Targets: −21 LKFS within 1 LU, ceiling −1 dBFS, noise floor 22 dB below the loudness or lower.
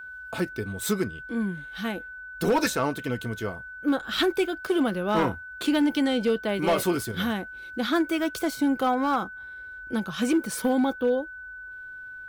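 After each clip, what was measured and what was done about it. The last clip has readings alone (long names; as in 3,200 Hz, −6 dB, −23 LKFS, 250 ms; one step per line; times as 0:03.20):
share of clipped samples 0.8%; peaks flattened at −16.5 dBFS; interfering tone 1,500 Hz; level of the tone −38 dBFS; integrated loudness −26.5 LKFS; sample peak −16.5 dBFS; target loudness −21.0 LKFS
→ clipped peaks rebuilt −16.5 dBFS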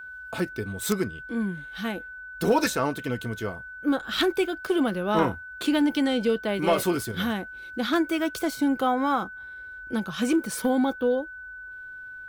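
share of clipped samples 0.0%; interfering tone 1,500 Hz; level of the tone −38 dBFS
→ notch filter 1,500 Hz, Q 30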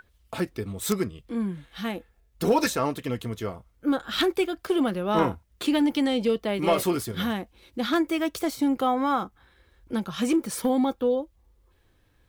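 interfering tone none found; integrated loudness −26.5 LKFS; sample peak −7.5 dBFS; target loudness −21.0 LKFS
→ level +5.5 dB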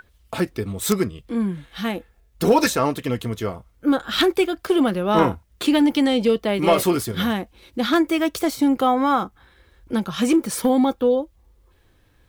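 integrated loudness −21.0 LKFS; sample peak −2.0 dBFS; background noise floor −59 dBFS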